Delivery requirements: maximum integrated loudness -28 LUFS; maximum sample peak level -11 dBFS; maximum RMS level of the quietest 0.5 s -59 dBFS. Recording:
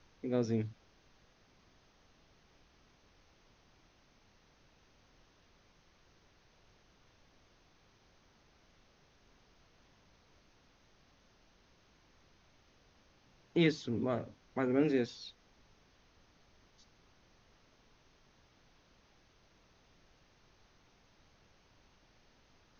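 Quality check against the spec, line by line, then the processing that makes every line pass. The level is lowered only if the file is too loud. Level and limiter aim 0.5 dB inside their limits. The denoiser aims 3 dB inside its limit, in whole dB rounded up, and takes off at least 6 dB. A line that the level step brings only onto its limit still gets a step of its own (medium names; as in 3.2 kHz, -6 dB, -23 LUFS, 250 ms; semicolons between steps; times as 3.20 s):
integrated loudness -34.5 LUFS: pass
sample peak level -16.5 dBFS: pass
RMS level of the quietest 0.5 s -67 dBFS: pass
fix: none needed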